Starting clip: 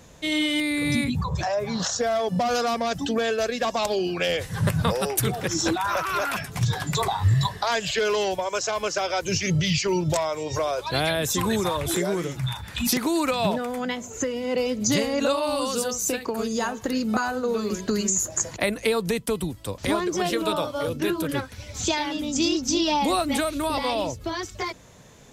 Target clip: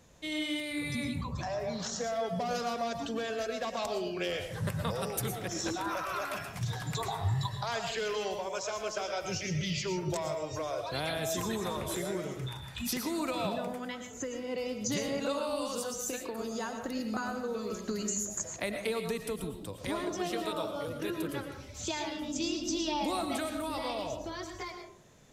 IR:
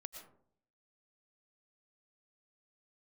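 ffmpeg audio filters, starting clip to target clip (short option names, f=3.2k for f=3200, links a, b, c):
-filter_complex "[1:a]atrim=start_sample=2205[a];[0:a][a]afir=irnorm=-1:irlink=0,volume=-5dB"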